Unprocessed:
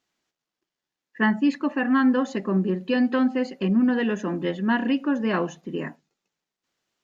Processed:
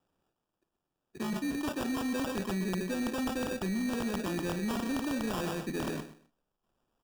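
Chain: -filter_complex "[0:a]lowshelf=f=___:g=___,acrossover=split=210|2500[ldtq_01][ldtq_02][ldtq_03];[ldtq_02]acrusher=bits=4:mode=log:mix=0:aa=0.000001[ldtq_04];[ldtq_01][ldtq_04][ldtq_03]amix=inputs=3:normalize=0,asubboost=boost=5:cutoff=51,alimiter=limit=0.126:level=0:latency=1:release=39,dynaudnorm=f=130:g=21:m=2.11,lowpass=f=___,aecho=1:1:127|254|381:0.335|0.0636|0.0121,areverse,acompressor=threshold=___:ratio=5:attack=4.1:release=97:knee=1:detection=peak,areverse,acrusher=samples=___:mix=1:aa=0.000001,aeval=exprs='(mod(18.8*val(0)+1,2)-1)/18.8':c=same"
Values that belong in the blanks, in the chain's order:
140, 7.5, 5400, 0.0251, 21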